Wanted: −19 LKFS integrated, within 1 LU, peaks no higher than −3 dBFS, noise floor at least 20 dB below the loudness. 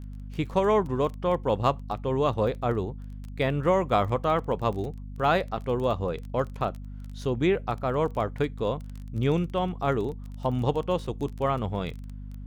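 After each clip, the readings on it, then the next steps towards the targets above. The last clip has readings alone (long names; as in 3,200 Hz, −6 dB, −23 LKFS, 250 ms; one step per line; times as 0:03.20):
crackle rate 19 per second; mains hum 50 Hz; hum harmonics up to 250 Hz; level of the hum −36 dBFS; integrated loudness −27.5 LKFS; sample peak −9.5 dBFS; target loudness −19.0 LKFS
→ click removal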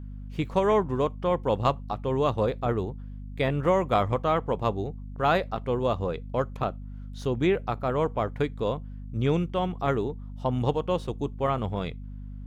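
crackle rate 0.48 per second; mains hum 50 Hz; hum harmonics up to 250 Hz; level of the hum −36 dBFS
→ mains-hum notches 50/100/150/200/250 Hz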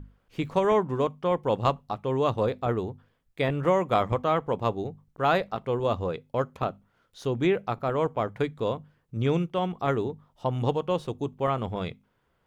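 mains hum none found; integrated loudness −28.0 LKFS; sample peak −9.5 dBFS; target loudness −19.0 LKFS
→ level +9 dB
brickwall limiter −3 dBFS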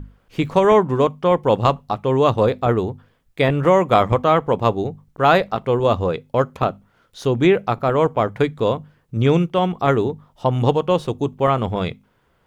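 integrated loudness −19.0 LKFS; sample peak −3.0 dBFS; background noise floor −62 dBFS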